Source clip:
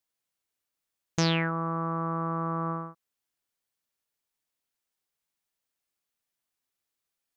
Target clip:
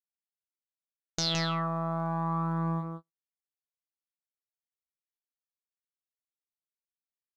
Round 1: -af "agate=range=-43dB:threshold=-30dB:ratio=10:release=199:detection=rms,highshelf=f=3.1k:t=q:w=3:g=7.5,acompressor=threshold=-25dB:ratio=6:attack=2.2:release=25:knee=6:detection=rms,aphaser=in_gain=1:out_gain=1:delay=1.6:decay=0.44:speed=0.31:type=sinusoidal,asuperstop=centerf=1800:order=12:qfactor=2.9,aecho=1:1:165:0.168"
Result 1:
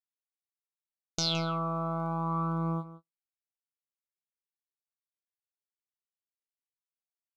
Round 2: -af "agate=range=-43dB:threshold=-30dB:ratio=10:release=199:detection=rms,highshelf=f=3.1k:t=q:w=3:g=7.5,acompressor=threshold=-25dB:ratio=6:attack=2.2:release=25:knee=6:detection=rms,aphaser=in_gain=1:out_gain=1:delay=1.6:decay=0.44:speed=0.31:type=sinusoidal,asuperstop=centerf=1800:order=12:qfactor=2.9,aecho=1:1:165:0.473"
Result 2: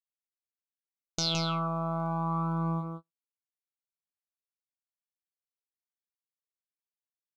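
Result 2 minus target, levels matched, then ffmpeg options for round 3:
2000 Hz band -3.5 dB
-af "agate=range=-43dB:threshold=-30dB:ratio=10:release=199:detection=rms,highshelf=f=3.1k:t=q:w=3:g=7.5,acompressor=threshold=-25dB:ratio=6:attack=2.2:release=25:knee=6:detection=rms,aphaser=in_gain=1:out_gain=1:delay=1.6:decay=0.44:speed=0.31:type=sinusoidal,aecho=1:1:165:0.473"

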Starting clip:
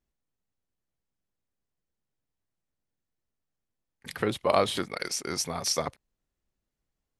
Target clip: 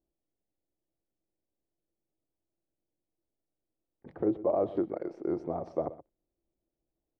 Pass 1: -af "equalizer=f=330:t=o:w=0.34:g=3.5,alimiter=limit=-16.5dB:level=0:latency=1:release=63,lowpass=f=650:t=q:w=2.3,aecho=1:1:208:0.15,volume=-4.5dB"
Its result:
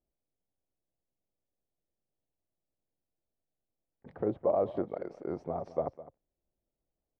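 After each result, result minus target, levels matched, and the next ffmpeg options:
echo 84 ms late; 250 Hz band -4.0 dB
-af "equalizer=f=330:t=o:w=0.34:g=3.5,alimiter=limit=-16.5dB:level=0:latency=1:release=63,lowpass=f=650:t=q:w=2.3,aecho=1:1:124:0.15,volume=-4.5dB"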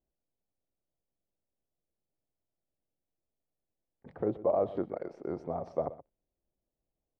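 250 Hz band -3.5 dB
-af "equalizer=f=330:t=o:w=0.34:g=13.5,alimiter=limit=-16.5dB:level=0:latency=1:release=63,lowpass=f=650:t=q:w=2.3,aecho=1:1:124:0.15,volume=-4.5dB"

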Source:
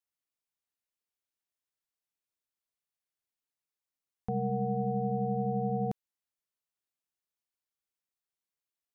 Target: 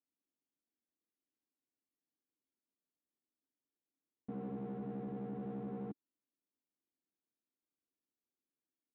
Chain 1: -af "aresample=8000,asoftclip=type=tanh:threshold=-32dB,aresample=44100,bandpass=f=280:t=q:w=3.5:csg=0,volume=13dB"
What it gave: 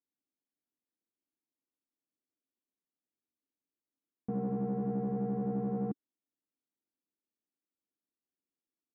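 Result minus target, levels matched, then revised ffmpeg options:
soft clip: distortion -6 dB
-af "aresample=8000,asoftclip=type=tanh:threshold=-43.5dB,aresample=44100,bandpass=f=280:t=q:w=3.5:csg=0,volume=13dB"

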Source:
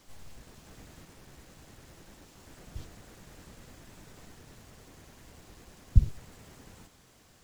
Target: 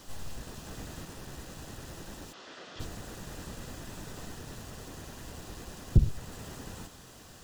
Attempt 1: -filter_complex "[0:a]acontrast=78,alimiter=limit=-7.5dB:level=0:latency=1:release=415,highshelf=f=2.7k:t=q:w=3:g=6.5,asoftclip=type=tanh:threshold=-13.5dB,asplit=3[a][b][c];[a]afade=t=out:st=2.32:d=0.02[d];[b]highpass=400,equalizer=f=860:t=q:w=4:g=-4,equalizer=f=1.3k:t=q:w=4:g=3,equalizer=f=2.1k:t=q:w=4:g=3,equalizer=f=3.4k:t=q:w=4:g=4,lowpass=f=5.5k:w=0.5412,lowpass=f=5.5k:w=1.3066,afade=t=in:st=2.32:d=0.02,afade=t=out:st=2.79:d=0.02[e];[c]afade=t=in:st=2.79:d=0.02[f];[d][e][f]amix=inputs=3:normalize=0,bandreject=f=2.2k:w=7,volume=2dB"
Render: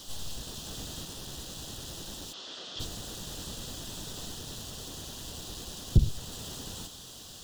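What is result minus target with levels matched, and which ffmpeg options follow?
4000 Hz band +8.5 dB
-filter_complex "[0:a]acontrast=78,alimiter=limit=-7.5dB:level=0:latency=1:release=415,asoftclip=type=tanh:threshold=-13.5dB,asplit=3[a][b][c];[a]afade=t=out:st=2.32:d=0.02[d];[b]highpass=400,equalizer=f=860:t=q:w=4:g=-4,equalizer=f=1.3k:t=q:w=4:g=3,equalizer=f=2.1k:t=q:w=4:g=3,equalizer=f=3.4k:t=q:w=4:g=4,lowpass=f=5.5k:w=0.5412,lowpass=f=5.5k:w=1.3066,afade=t=in:st=2.32:d=0.02,afade=t=out:st=2.79:d=0.02[e];[c]afade=t=in:st=2.79:d=0.02[f];[d][e][f]amix=inputs=3:normalize=0,bandreject=f=2.2k:w=7,volume=2dB"

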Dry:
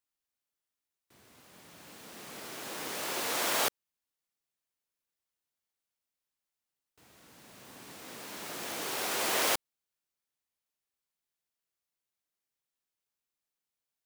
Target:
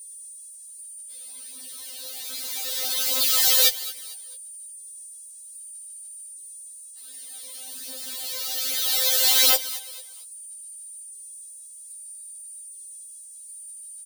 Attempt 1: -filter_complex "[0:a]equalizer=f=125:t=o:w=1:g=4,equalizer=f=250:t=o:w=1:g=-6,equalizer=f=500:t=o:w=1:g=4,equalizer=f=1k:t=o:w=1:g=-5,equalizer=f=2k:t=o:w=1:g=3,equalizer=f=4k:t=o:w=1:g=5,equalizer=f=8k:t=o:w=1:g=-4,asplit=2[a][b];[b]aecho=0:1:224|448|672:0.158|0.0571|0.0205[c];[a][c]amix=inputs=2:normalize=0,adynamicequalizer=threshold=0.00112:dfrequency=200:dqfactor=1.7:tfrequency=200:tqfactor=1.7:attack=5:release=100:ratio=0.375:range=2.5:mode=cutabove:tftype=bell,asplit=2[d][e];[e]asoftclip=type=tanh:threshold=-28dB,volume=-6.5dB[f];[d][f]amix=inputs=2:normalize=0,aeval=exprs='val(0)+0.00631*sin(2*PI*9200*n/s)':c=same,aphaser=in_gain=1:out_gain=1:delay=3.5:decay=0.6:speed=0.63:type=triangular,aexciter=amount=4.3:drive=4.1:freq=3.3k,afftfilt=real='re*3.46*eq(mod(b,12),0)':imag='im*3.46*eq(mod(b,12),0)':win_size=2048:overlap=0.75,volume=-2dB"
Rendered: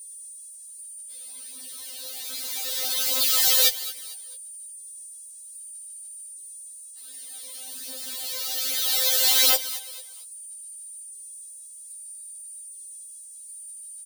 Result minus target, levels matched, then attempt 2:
soft clip: distortion +15 dB
-filter_complex "[0:a]equalizer=f=125:t=o:w=1:g=4,equalizer=f=250:t=o:w=1:g=-6,equalizer=f=500:t=o:w=1:g=4,equalizer=f=1k:t=o:w=1:g=-5,equalizer=f=2k:t=o:w=1:g=3,equalizer=f=4k:t=o:w=1:g=5,equalizer=f=8k:t=o:w=1:g=-4,asplit=2[a][b];[b]aecho=0:1:224|448|672:0.158|0.0571|0.0205[c];[a][c]amix=inputs=2:normalize=0,adynamicequalizer=threshold=0.00112:dfrequency=200:dqfactor=1.7:tfrequency=200:tqfactor=1.7:attack=5:release=100:ratio=0.375:range=2.5:mode=cutabove:tftype=bell,asplit=2[d][e];[e]asoftclip=type=tanh:threshold=-16.5dB,volume=-6.5dB[f];[d][f]amix=inputs=2:normalize=0,aeval=exprs='val(0)+0.00631*sin(2*PI*9200*n/s)':c=same,aphaser=in_gain=1:out_gain=1:delay=3.5:decay=0.6:speed=0.63:type=triangular,aexciter=amount=4.3:drive=4.1:freq=3.3k,afftfilt=real='re*3.46*eq(mod(b,12),0)':imag='im*3.46*eq(mod(b,12),0)':win_size=2048:overlap=0.75,volume=-2dB"

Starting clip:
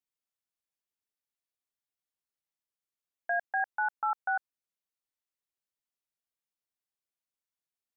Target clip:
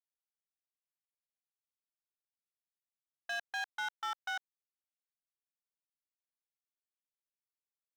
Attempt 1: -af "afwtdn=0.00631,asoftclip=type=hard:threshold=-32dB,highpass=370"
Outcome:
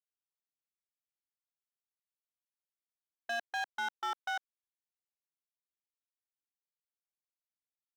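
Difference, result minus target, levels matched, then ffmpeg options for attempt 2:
500 Hz band +5.0 dB
-af "afwtdn=0.00631,asoftclip=type=hard:threshold=-32dB,highpass=960"

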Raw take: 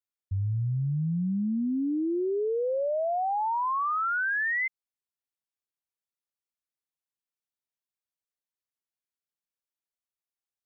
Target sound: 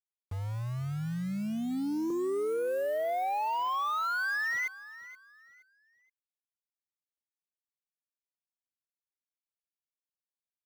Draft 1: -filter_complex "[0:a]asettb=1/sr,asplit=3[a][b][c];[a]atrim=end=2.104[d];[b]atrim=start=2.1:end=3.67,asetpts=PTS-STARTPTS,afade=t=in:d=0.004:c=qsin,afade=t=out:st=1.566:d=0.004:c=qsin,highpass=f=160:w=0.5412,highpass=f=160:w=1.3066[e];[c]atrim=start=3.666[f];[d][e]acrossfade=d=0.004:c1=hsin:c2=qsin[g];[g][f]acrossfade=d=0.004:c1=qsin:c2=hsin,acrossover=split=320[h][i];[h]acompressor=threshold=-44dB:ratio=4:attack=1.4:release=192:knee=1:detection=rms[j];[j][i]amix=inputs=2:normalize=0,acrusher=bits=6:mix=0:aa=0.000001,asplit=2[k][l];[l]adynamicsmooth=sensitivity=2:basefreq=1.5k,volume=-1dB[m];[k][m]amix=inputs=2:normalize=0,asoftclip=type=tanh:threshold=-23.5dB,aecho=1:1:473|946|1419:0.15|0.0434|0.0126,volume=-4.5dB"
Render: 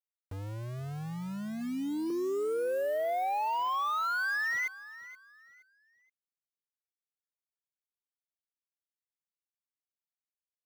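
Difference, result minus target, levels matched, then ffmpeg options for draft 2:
compressor: peak gain reduction +7 dB
-filter_complex "[0:a]asettb=1/sr,asplit=3[a][b][c];[a]atrim=end=2.104[d];[b]atrim=start=2.1:end=3.67,asetpts=PTS-STARTPTS,afade=t=in:d=0.004:c=qsin,afade=t=out:st=1.566:d=0.004:c=qsin,highpass=f=160:w=0.5412,highpass=f=160:w=1.3066[e];[c]atrim=start=3.666[f];[d][e]acrossfade=d=0.004:c1=hsin:c2=qsin[g];[g][f]acrossfade=d=0.004:c1=qsin:c2=hsin,acrossover=split=320[h][i];[h]acompressor=threshold=-34.5dB:ratio=4:attack=1.4:release=192:knee=1:detection=rms[j];[j][i]amix=inputs=2:normalize=0,acrusher=bits=6:mix=0:aa=0.000001,asplit=2[k][l];[l]adynamicsmooth=sensitivity=2:basefreq=1.5k,volume=-1dB[m];[k][m]amix=inputs=2:normalize=0,asoftclip=type=tanh:threshold=-23.5dB,aecho=1:1:473|946|1419:0.15|0.0434|0.0126,volume=-4.5dB"

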